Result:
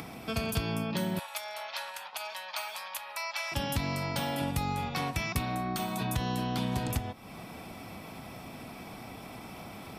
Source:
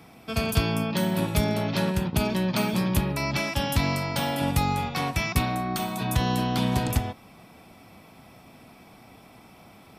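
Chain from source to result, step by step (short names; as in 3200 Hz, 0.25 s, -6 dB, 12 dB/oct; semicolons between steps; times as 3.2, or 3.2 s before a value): compressor 2.5:1, threshold -31 dBFS, peak gain reduction 10 dB; 1.19–3.52 inverse Chebyshev high-pass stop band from 360 Hz, stop band 40 dB; upward compressor, threshold -36 dBFS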